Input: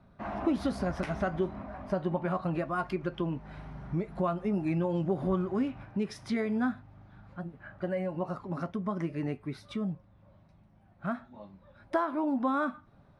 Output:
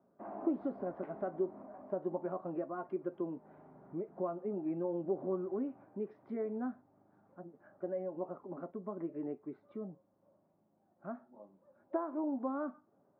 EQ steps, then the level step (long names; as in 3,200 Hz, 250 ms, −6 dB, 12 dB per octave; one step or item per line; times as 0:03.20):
four-pole ladder band-pass 470 Hz, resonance 25%
high-frequency loss of the air 190 metres
+6.5 dB